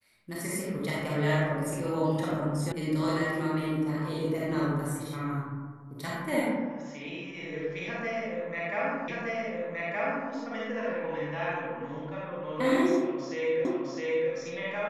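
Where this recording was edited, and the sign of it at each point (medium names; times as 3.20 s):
2.72 s: sound stops dead
9.08 s: repeat of the last 1.22 s
13.65 s: repeat of the last 0.66 s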